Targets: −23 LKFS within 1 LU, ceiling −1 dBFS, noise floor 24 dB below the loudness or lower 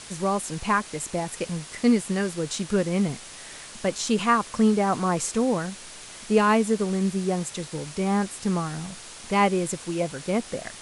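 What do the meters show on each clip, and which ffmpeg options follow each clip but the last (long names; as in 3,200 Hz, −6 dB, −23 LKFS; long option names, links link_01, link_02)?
background noise floor −43 dBFS; target noise floor −50 dBFS; integrated loudness −25.5 LKFS; sample peak −8.0 dBFS; target loudness −23.0 LKFS
→ -af "afftdn=noise_reduction=7:noise_floor=-43"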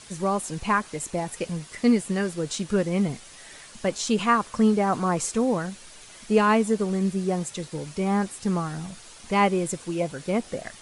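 background noise floor −47 dBFS; target noise floor −50 dBFS
→ -af "afftdn=noise_reduction=6:noise_floor=-47"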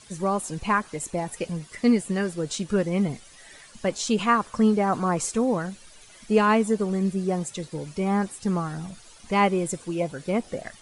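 background noise floor −50 dBFS; integrated loudness −25.5 LKFS; sample peak −8.0 dBFS; target loudness −23.0 LKFS
→ -af "volume=2.5dB"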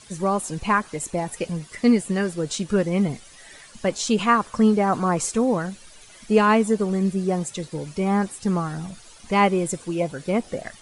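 integrated loudness −23.0 LKFS; sample peak −5.5 dBFS; background noise floor −48 dBFS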